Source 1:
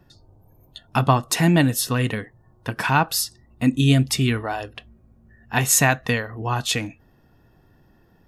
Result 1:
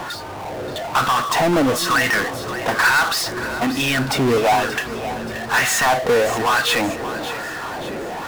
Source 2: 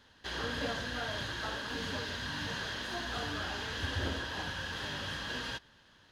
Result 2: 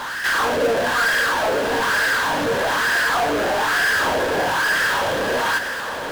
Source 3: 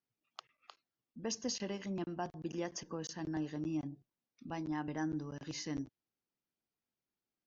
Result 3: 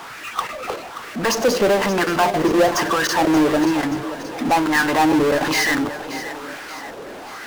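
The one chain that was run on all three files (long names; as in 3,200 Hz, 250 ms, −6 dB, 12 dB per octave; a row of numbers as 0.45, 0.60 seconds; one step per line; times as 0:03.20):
in parallel at −1 dB: compressor whose output falls as the input rises −22 dBFS
on the sum: LFO wah 1.1 Hz 470–1,700 Hz, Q 2.9
power curve on the samples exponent 0.35
echo with a time of its own for lows and highs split 430 Hz, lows 340 ms, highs 579 ms, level −12.5 dB
loudness normalisation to −19 LKFS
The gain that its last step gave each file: −1.5, +11.0, +18.5 decibels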